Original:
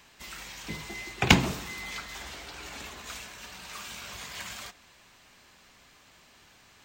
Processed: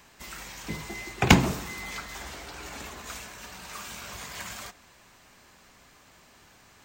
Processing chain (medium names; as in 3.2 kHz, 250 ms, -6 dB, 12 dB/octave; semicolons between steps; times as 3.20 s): peaking EQ 3.3 kHz -5.5 dB 1.5 oct; trim +3.5 dB